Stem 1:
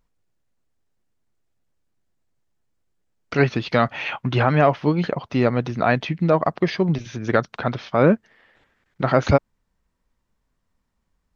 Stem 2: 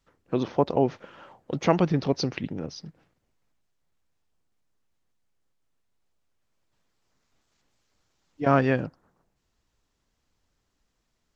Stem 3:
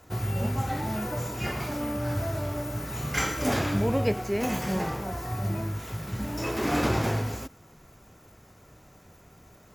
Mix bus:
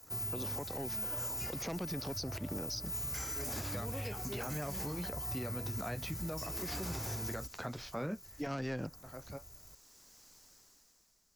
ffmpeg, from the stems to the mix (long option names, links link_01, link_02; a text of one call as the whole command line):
ffmpeg -i stem1.wav -i stem2.wav -i stem3.wav -filter_complex "[0:a]flanger=delay=9.9:depth=5.8:regen=-51:speed=0.28:shape=sinusoidal,volume=-8dB[link_01];[1:a]lowshelf=frequency=160:gain=-10.5,dynaudnorm=framelen=140:gausssize=13:maxgain=16dB,aeval=exprs='(tanh(3.16*val(0)+0.3)-tanh(0.3))/3.16':channel_layout=same,volume=-3dB,asplit=2[link_02][link_03];[2:a]asubboost=boost=4.5:cutoff=92,volume=-10.5dB[link_04];[link_03]apad=whole_len=500606[link_05];[link_01][link_05]sidechaincompress=threshold=-41dB:ratio=8:attack=16:release=1430[link_06];[link_06][link_02][link_04]amix=inputs=3:normalize=0,acrossover=split=200|510|1400[link_07][link_08][link_09][link_10];[link_07]acompressor=threshold=-33dB:ratio=4[link_11];[link_08]acompressor=threshold=-37dB:ratio=4[link_12];[link_09]acompressor=threshold=-40dB:ratio=4[link_13];[link_10]acompressor=threshold=-40dB:ratio=4[link_14];[link_11][link_12][link_13][link_14]amix=inputs=4:normalize=0,aexciter=amount=2:drive=9.6:freq=4600,alimiter=level_in=4.5dB:limit=-24dB:level=0:latency=1:release=143,volume=-4.5dB" out.wav